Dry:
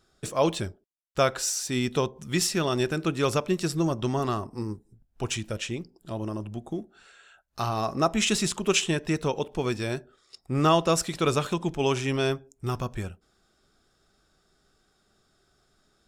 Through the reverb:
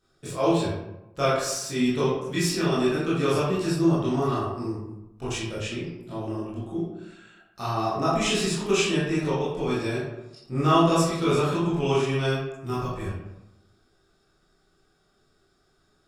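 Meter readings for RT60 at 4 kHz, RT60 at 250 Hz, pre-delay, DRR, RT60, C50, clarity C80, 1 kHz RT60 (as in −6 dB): 0.50 s, 1.1 s, 18 ms, −9.5 dB, 0.90 s, 0.0 dB, 3.5 dB, 0.90 s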